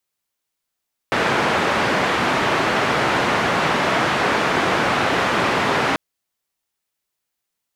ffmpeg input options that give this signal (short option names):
-f lavfi -i "anoisesrc=c=white:d=4.84:r=44100:seed=1,highpass=f=120,lowpass=f=1600,volume=-2.9dB"